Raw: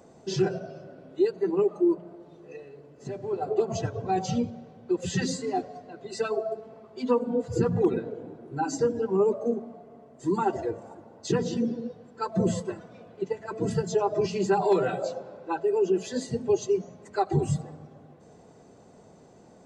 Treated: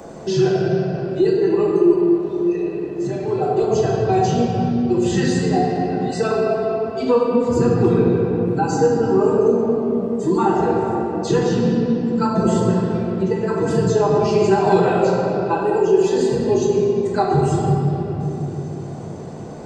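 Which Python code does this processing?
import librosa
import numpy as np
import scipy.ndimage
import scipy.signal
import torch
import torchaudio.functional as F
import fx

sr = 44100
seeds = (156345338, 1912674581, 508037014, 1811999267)

y = fx.room_shoebox(x, sr, seeds[0], volume_m3=130.0, walls='hard', distance_m=0.65)
y = fx.band_squash(y, sr, depth_pct=40)
y = y * librosa.db_to_amplitude(4.5)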